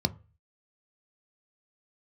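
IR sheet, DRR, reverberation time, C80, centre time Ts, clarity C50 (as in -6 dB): 10.5 dB, 0.35 s, 28.0 dB, 3 ms, 22.5 dB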